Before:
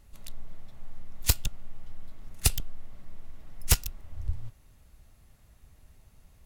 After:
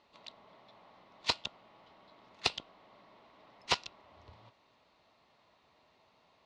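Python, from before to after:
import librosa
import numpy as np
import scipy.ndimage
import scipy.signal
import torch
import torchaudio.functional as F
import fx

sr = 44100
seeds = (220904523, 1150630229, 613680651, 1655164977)

y = fx.cabinet(x, sr, low_hz=360.0, low_slope=12, high_hz=4400.0, hz=(650.0, 1000.0, 1600.0, 4100.0), db=(3, 8, -5, 4))
y = y * librosa.db_to_amplitude(1.0)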